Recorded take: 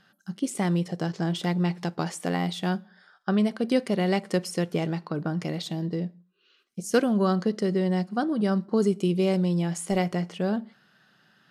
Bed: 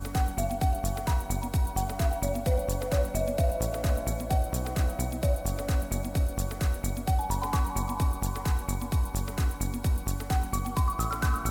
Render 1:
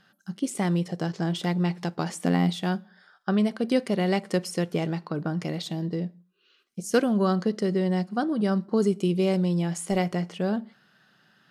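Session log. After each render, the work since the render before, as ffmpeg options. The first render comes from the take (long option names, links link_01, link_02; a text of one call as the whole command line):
ffmpeg -i in.wav -filter_complex "[0:a]asettb=1/sr,asplit=3[link_01][link_02][link_03];[link_01]atrim=end=2.094[link_04];[link_02]atrim=start=2.09:end=2.56,asetpts=PTS-STARTPTS,afade=type=in:duration=0.004:curve=qsin,afade=type=out:start_time=0.466:duration=0.004:curve=qsin,equalizer=frequency=220:width_type=o:width=0.77:gain=9.5[link_05];[link_03]atrim=start=2.556[link_06];[link_04][link_05]acrossfade=duration=0.004:curve1=hsin:curve2=qsin[link_07];[link_07][link_06]acrossfade=duration=0.004:curve1=qsin:curve2=hsin" out.wav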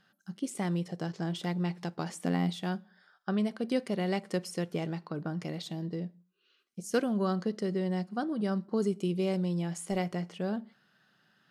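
ffmpeg -i in.wav -af "volume=-6.5dB" out.wav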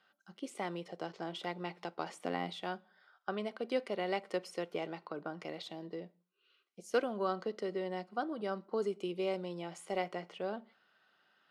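ffmpeg -i in.wav -filter_complex "[0:a]acrossover=split=340 4000:gain=0.1 1 0.251[link_01][link_02][link_03];[link_01][link_02][link_03]amix=inputs=3:normalize=0,bandreject=frequency=1700:width=8.3" out.wav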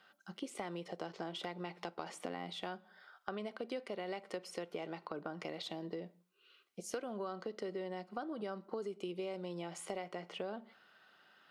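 ffmpeg -i in.wav -filter_complex "[0:a]asplit=2[link_01][link_02];[link_02]alimiter=level_in=6dB:limit=-24dB:level=0:latency=1:release=38,volume=-6dB,volume=0dB[link_03];[link_01][link_03]amix=inputs=2:normalize=0,acompressor=threshold=-39dB:ratio=5" out.wav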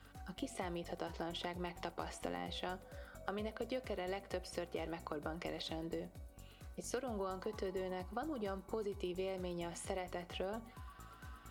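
ffmpeg -i in.wav -i bed.wav -filter_complex "[1:a]volume=-26.5dB[link_01];[0:a][link_01]amix=inputs=2:normalize=0" out.wav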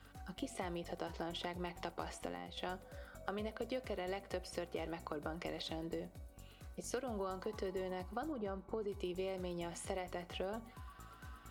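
ffmpeg -i in.wav -filter_complex "[0:a]asplit=3[link_01][link_02][link_03];[link_01]afade=type=out:start_time=8.31:duration=0.02[link_04];[link_02]lowpass=frequency=1500:poles=1,afade=type=in:start_time=8.31:duration=0.02,afade=type=out:start_time=8.87:duration=0.02[link_05];[link_03]afade=type=in:start_time=8.87:duration=0.02[link_06];[link_04][link_05][link_06]amix=inputs=3:normalize=0,asplit=2[link_07][link_08];[link_07]atrim=end=2.57,asetpts=PTS-STARTPTS,afade=type=out:start_time=2.13:duration=0.44:silence=0.398107[link_09];[link_08]atrim=start=2.57,asetpts=PTS-STARTPTS,afade=type=in:duration=0.004:curve=hsin:silence=0.398107[link_10];[link_09][link_10]concat=n=2:v=0:a=1" out.wav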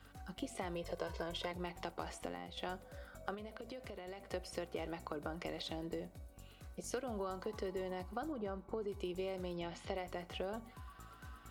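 ffmpeg -i in.wav -filter_complex "[0:a]asettb=1/sr,asplit=3[link_01][link_02][link_03];[link_01]atrim=end=0.754[link_04];[link_02]atrim=start=0.75:end=1.52,asetpts=PTS-STARTPTS,afade=type=in:duration=0.004:curve=qsin,afade=type=out:start_time=0.766:duration=0.004:curve=qsin,aecho=1:1:1.9:0.69,atrim=end_sample=33957[link_05];[link_03]atrim=start=1.516[link_06];[link_04][link_05]acrossfade=duration=0.004:curve1=hsin:curve2=qsin[link_07];[link_07][link_06]acrossfade=duration=0.004:curve1=qsin:curve2=hsin,asettb=1/sr,asplit=3[link_08][link_09][link_10];[link_08]atrim=end=3.344[link_11];[link_09]atrim=start=3.34:end=4.26,asetpts=PTS-STARTPTS,afade=type=in:duration=0.004:curve=qsin,afade=type=out:start_time=0.916:duration=0.004:curve=qsin,acompressor=threshold=-43dB:ratio=10:attack=3.2:release=140:knee=1:detection=peak[link_12];[link_10]atrim=start=4.256[link_13];[link_11][link_12]acrossfade=duration=0.004:curve1=hsin:curve2=qsin[link_14];[link_14][link_13]acrossfade=duration=0.004:curve1=qsin:curve2=hsin,asettb=1/sr,asplit=3[link_15][link_16][link_17];[link_15]atrim=end=9.564[link_18];[link_16]atrim=start=9.56:end=9.96,asetpts=PTS-STARTPTS,afade=type=in:duration=0.004:curve=qsin,afade=type=out:start_time=0.396:duration=0.004:curve=qsin,highshelf=frequency=6400:width_type=q:width=1.5:gain=-14[link_19];[link_17]atrim=start=9.956[link_20];[link_18][link_19]acrossfade=duration=0.004:curve1=hsin:curve2=qsin[link_21];[link_21][link_20]acrossfade=duration=0.004:curve1=qsin:curve2=hsin" out.wav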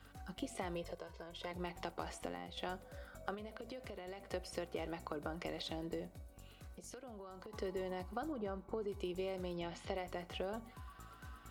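ffmpeg -i in.wav -filter_complex "[0:a]asettb=1/sr,asplit=3[link_01][link_02][link_03];[link_01]atrim=end=6.214[link_04];[link_02]atrim=start=6.21:end=7.53,asetpts=PTS-STARTPTS,afade=type=in:duration=0.004:curve=qsin,afade=type=out:start_time=1.316:duration=0.004:curve=qsin,acompressor=threshold=-49dB:ratio=4:attack=3.2:release=140:knee=1:detection=peak[link_05];[link_03]atrim=start=7.526[link_06];[link_04][link_05]acrossfade=duration=0.004:curve1=hsin:curve2=qsin[link_07];[link_07][link_06]acrossfade=duration=0.004:curve1=qsin:curve2=hsin,asplit=3[link_08][link_09][link_10];[link_08]atrim=end=1.03,asetpts=PTS-STARTPTS,afade=type=out:start_time=0.78:duration=0.25:silence=0.354813[link_11];[link_09]atrim=start=1.03:end=1.34,asetpts=PTS-STARTPTS,volume=-9dB[link_12];[link_10]atrim=start=1.34,asetpts=PTS-STARTPTS,afade=type=in:duration=0.25:silence=0.354813[link_13];[link_11][link_12][link_13]concat=n=3:v=0:a=1" out.wav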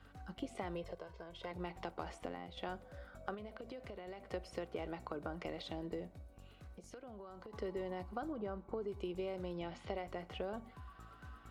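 ffmpeg -i in.wav -af "lowpass=frequency=2900:poles=1" out.wav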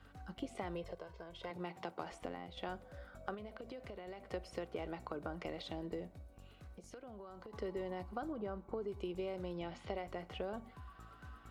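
ffmpeg -i in.wav -filter_complex "[0:a]asettb=1/sr,asplit=3[link_01][link_02][link_03];[link_01]atrim=end=1.504[link_04];[link_02]atrim=start=1.5:end=2.12,asetpts=PTS-STARTPTS,afade=type=in:duration=0.004:curve=qsin,afade=type=out:start_time=0.616:duration=0.004:curve=qsin,highpass=frequency=120:width=0.5412,highpass=frequency=120:width=1.3066[link_05];[link_03]atrim=start=2.116[link_06];[link_04][link_05]acrossfade=duration=0.004:curve1=hsin:curve2=qsin[link_07];[link_07][link_06]acrossfade=duration=0.004:curve1=qsin:curve2=hsin" out.wav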